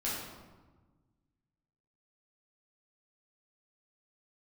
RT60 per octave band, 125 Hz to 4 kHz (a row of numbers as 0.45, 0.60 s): 2.1, 1.8, 1.3, 1.3, 0.95, 0.75 s